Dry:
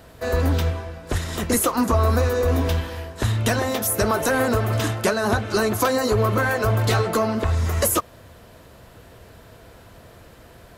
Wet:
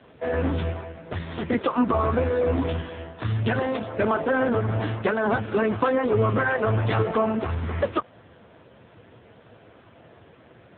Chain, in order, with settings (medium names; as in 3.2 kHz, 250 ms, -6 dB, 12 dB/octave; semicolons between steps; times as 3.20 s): 4.19–4.82 s: median filter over 15 samples; bass shelf 62 Hz -2.5 dB; AMR-NB 5.9 kbps 8 kHz